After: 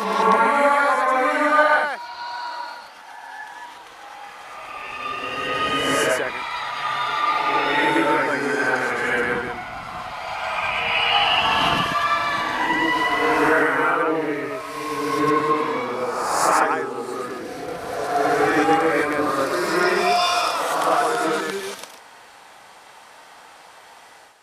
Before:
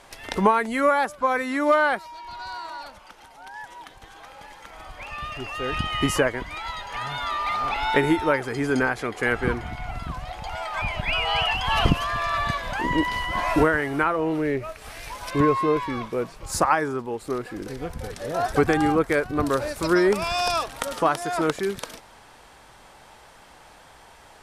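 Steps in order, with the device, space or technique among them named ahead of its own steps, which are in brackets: ghost voice (reverse; reverberation RT60 1.9 s, pre-delay 95 ms, DRR -8 dB; reverse; high-pass 600 Hz 6 dB/octave); trim -2.5 dB

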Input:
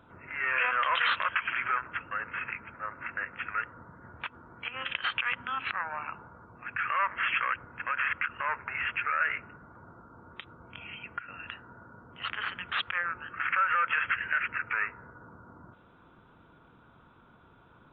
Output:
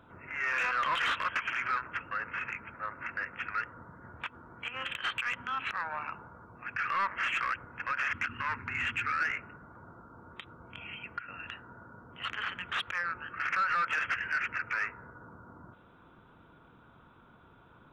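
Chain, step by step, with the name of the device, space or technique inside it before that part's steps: 8.13–9.31 s: fifteen-band graphic EQ 100 Hz +12 dB, 250 Hz +11 dB, 630 Hz -11 dB, 4 kHz +10 dB; saturation between pre-emphasis and de-emphasis (treble shelf 3.7 kHz +11.5 dB; saturation -22 dBFS, distortion -13 dB; treble shelf 3.7 kHz -11.5 dB)

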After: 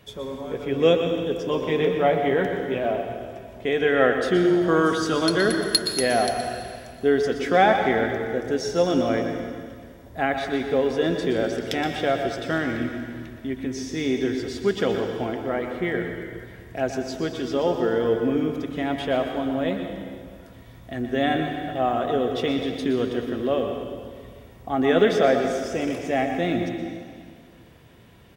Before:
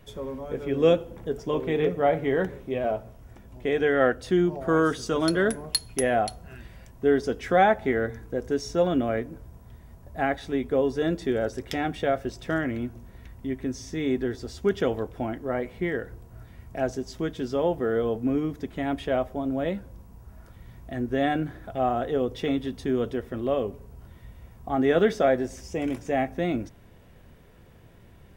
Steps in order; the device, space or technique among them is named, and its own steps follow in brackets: PA in a hall (high-pass 100 Hz 6 dB/octave; peaking EQ 3.5 kHz +5 dB 1.4 oct; delay 122 ms -11 dB; reverberation RT60 1.9 s, pre-delay 109 ms, DRR 5.5 dB); trim +1.5 dB

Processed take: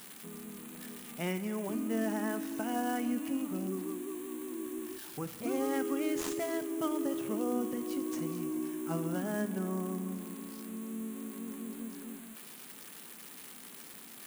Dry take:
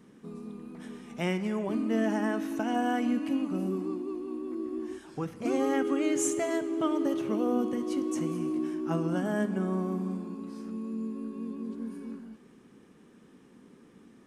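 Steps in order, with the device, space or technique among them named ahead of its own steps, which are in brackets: budget class-D amplifier (dead-time distortion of 0.096 ms; zero-crossing glitches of -25 dBFS); trim -5 dB

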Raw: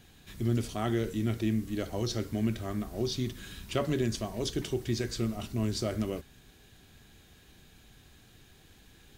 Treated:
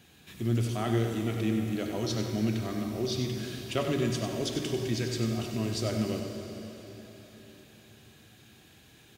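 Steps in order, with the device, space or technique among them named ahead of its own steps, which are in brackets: PA in a hall (high-pass 100 Hz; peaking EQ 2.6 kHz +3.5 dB 0.3 oct; delay 95 ms -8.5 dB; reverberation RT60 4.0 s, pre-delay 48 ms, DRR 5 dB)

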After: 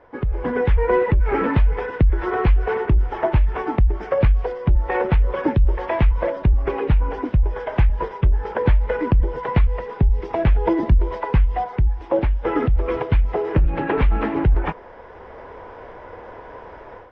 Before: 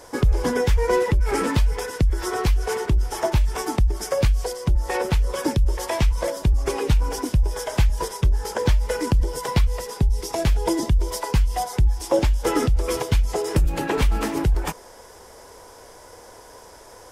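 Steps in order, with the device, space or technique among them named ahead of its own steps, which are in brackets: action camera in a waterproof case (low-pass 2.4 kHz 24 dB/octave; level rider gain up to 13 dB; trim -5.5 dB; AAC 48 kbps 44.1 kHz)

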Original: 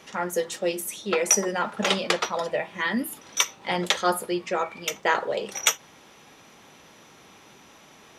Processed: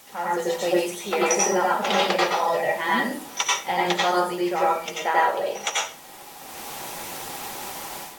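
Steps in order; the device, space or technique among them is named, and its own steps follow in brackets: filmed off a television (band-pass 170–6200 Hz; peaking EQ 800 Hz +11 dB 0.45 oct; reverberation RT60 0.35 s, pre-delay 84 ms, DRR -4.5 dB; white noise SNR 22 dB; level rider gain up to 13 dB; trim -7.5 dB; AAC 64 kbps 44.1 kHz)

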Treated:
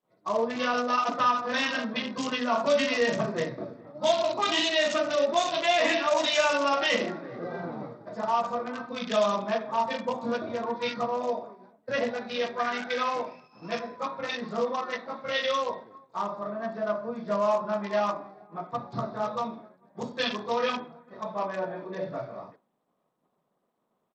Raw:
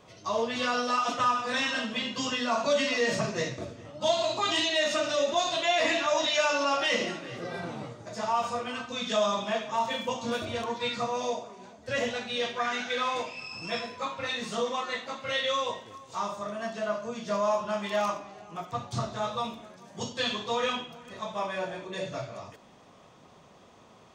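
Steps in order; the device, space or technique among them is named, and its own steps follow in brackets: local Wiener filter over 15 samples; expander -42 dBFS; Bluetooth headset (high-pass 150 Hz 24 dB/octave; resampled via 16 kHz; trim +2.5 dB; SBC 64 kbps 32 kHz)

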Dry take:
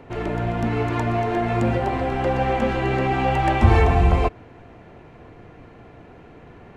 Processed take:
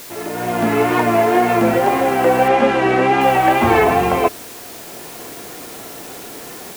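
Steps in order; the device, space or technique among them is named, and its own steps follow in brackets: dictaphone (band-pass 250–3600 Hz; level rider gain up to 11 dB; wow and flutter; white noise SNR 19 dB); 2.48–3.21 s: low-pass 5.9 kHz 12 dB/octave

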